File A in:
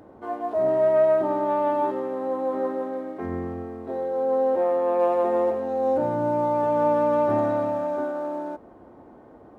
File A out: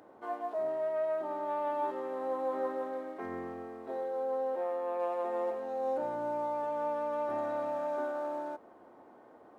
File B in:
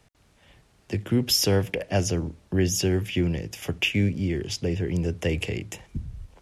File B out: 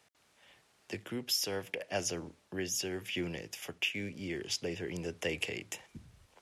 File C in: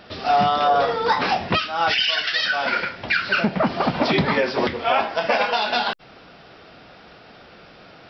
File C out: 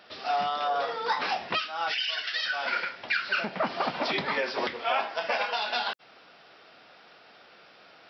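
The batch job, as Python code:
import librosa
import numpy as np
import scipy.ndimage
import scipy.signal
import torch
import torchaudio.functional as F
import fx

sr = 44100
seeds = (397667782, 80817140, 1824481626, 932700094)

y = fx.highpass(x, sr, hz=690.0, slope=6)
y = fx.rider(y, sr, range_db=4, speed_s=0.5)
y = y * 10.0 ** (-6.5 / 20.0)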